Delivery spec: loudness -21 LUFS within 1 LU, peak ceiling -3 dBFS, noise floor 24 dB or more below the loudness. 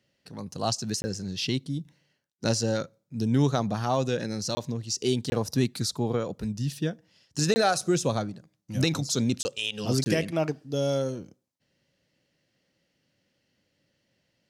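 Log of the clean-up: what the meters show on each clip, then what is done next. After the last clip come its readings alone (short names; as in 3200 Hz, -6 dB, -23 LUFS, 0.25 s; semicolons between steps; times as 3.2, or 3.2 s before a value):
dropouts 6; longest dropout 20 ms; loudness -28.0 LUFS; peak -10.5 dBFS; loudness target -21.0 LUFS
-> interpolate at 1.02/4.55/5.3/7.54/9.43/10.04, 20 ms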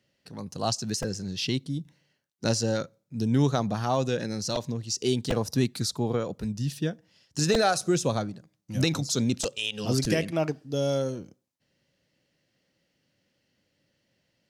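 dropouts 0; loudness -28.0 LUFS; peak -10.5 dBFS; loudness target -21.0 LUFS
-> gain +7 dB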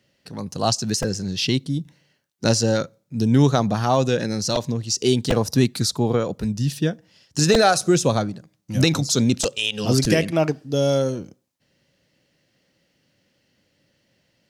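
loudness -21.0 LUFS; peak -3.5 dBFS; noise floor -68 dBFS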